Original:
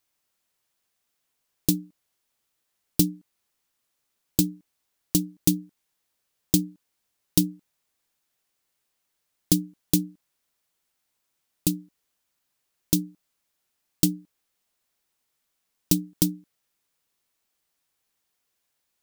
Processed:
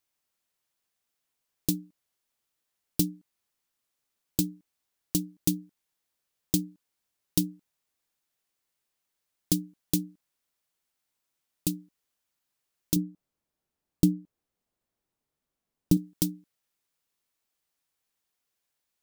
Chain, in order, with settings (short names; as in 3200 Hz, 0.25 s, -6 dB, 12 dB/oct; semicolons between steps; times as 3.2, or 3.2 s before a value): 12.96–15.97 tilt shelf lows +7.5 dB, about 910 Hz; gain -5 dB